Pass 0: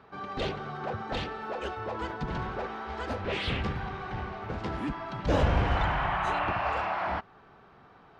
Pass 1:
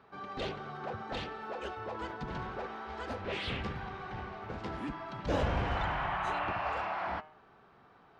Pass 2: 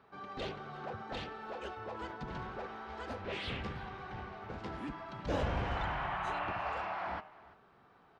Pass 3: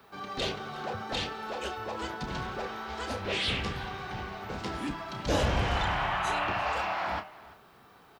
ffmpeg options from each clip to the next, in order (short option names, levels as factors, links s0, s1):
-af "lowshelf=f=120:g=-4.5,bandreject=f=154.2:t=h:w=4,bandreject=f=308.4:t=h:w=4,bandreject=f=462.6:t=h:w=4,bandreject=f=616.8:t=h:w=4,bandreject=f=771:t=h:w=4,bandreject=f=925.2:t=h:w=4,bandreject=f=1079.4:t=h:w=4,bandreject=f=1233.6:t=h:w=4,bandreject=f=1387.8:t=h:w=4,bandreject=f=1542:t=h:w=4,bandreject=f=1696.2:t=h:w=4,bandreject=f=1850.4:t=h:w=4,bandreject=f=2004.6:t=h:w=4,bandreject=f=2158.8:t=h:w=4,bandreject=f=2313:t=h:w=4,bandreject=f=2467.2:t=h:w=4,bandreject=f=2621.4:t=h:w=4,bandreject=f=2775.6:t=h:w=4,bandreject=f=2929.8:t=h:w=4,bandreject=f=3084:t=h:w=4,bandreject=f=3238.2:t=h:w=4,bandreject=f=3392.4:t=h:w=4,volume=0.596"
-af "aecho=1:1:341:0.106,volume=0.708"
-filter_complex "[0:a]acrossover=split=150|1700[s0][s1][s2];[s2]crystalizer=i=3.5:c=0[s3];[s0][s1][s3]amix=inputs=3:normalize=0,asplit=2[s4][s5];[s5]adelay=31,volume=0.335[s6];[s4][s6]amix=inputs=2:normalize=0,volume=2"